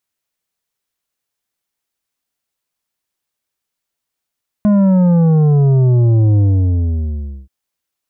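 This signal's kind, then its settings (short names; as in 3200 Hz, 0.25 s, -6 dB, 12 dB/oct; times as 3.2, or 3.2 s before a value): sub drop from 210 Hz, over 2.83 s, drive 8.5 dB, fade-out 1.10 s, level -9 dB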